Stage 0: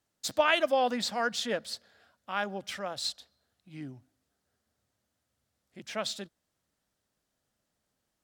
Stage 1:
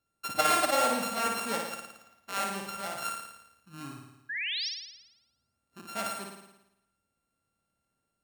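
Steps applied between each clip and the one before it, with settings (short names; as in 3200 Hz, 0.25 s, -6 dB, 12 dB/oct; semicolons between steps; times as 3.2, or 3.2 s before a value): sample sorter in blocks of 32 samples; painted sound rise, 4.29–4.69, 1600–5900 Hz -33 dBFS; flutter echo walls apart 9.6 m, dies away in 0.9 s; gain -2 dB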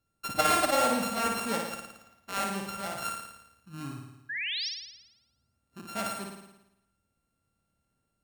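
low shelf 220 Hz +9 dB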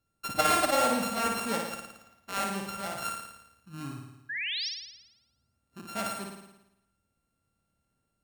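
nothing audible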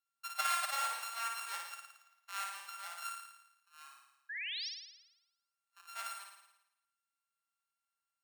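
HPF 990 Hz 24 dB/oct; gain -7.5 dB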